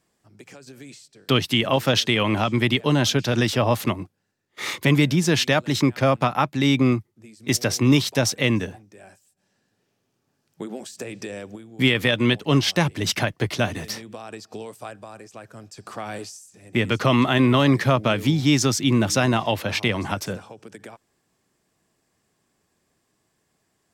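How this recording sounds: noise floor -72 dBFS; spectral tilt -5.0 dB/octave

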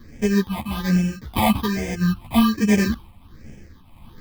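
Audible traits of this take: aliases and images of a low sample rate 1.4 kHz, jitter 0%; phasing stages 6, 1.2 Hz, lowest notch 420–1100 Hz; tremolo triangle 1.5 Hz, depth 60%; a shimmering, thickened sound

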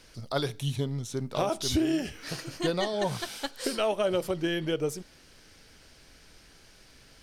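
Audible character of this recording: noise floor -56 dBFS; spectral tilt -5.0 dB/octave

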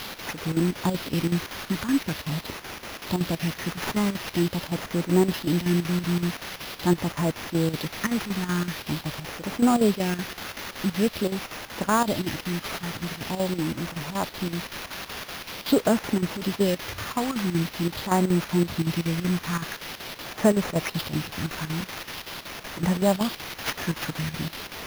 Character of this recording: a quantiser's noise floor 6-bit, dither triangular; phasing stages 4, 0.45 Hz, lowest notch 560–3300 Hz; aliases and images of a low sample rate 8.1 kHz, jitter 0%; chopped level 5.3 Hz, depth 65%, duty 75%

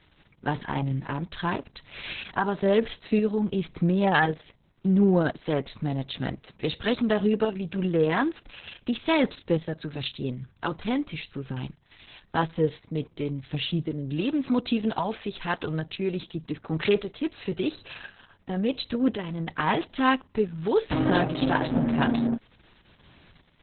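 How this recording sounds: tremolo saw up 0.94 Hz, depth 45%; Opus

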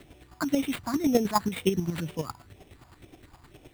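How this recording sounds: a quantiser's noise floor 10-bit, dither none; chopped level 9.6 Hz, depth 60%, duty 25%; phasing stages 4, 2 Hz, lowest notch 450–1400 Hz; aliases and images of a low sample rate 5.9 kHz, jitter 0%

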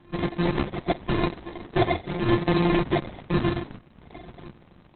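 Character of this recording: a buzz of ramps at a fixed pitch in blocks of 128 samples; phasing stages 12, 0.89 Hz, lowest notch 430–1000 Hz; aliases and images of a low sample rate 1.4 kHz, jitter 0%; Opus

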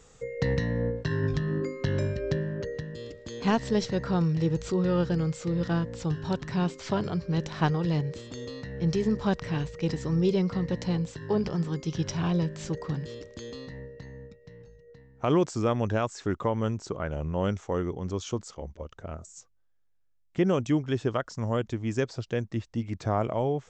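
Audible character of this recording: noise floor -60 dBFS; spectral tilt -7.0 dB/octave

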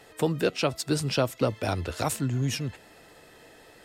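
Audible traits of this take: noise floor -54 dBFS; spectral tilt -5.0 dB/octave

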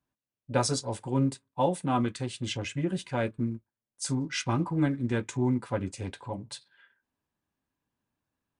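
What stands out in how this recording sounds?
noise floor -93 dBFS; spectral tilt -5.5 dB/octave

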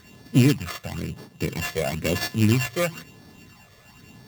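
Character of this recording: a buzz of ramps at a fixed pitch in blocks of 16 samples; phasing stages 12, 1 Hz, lowest notch 260–2400 Hz; aliases and images of a low sample rate 10 kHz, jitter 0%

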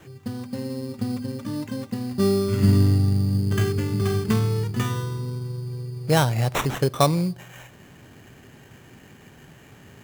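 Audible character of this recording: aliases and images of a low sample rate 4.7 kHz, jitter 0%

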